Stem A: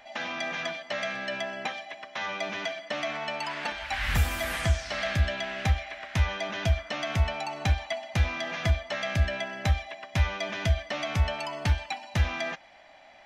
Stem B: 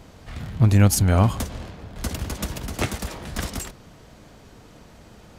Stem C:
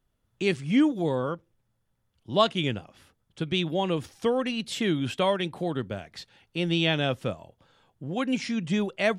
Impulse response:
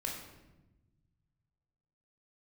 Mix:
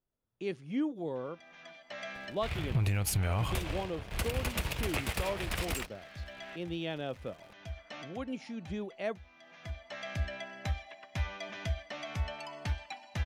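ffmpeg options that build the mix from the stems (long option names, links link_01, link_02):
-filter_complex "[0:a]adelay=1000,volume=-9.5dB[link_01];[1:a]equalizer=frequency=250:width_type=o:width=0.67:gain=-11,equalizer=frequency=2500:width_type=o:width=0.67:gain=9,equalizer=frequency=6300:width_type=o:width=0.67:gain=-6,alimiter=limit=-12.5dB:level=0:latency=1:release=165,aeval=exprs='sgn(val(0))*max(abs(val(0))-0.00631,0)':channel_layout=same,adelay=2150,volume=0dB[link_02];[2:a]equalizer=frequency=490:width=0.49:gain=8,bandreject=frequency=7900:width=5.4,volume=-17dB,asplit=2[link_03][link_04];[link_04]apad=whole_len=628461[link_05];[link_01][link_05]sidechaincompress=threshold=-51dB:ratio=16:attack=7.7:release=618[link_06];[link_06][link_02][link_03]amix=inputs=3:normalize=0,alimiter=limit=-21dB:level=0:latency=1:release=99"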